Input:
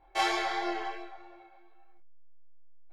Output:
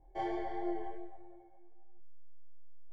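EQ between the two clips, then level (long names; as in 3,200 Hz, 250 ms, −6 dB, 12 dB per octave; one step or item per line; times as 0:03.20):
moving average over 34 samples
low-shelf EQ 320 Hz +8.5 dB
−3.5 dB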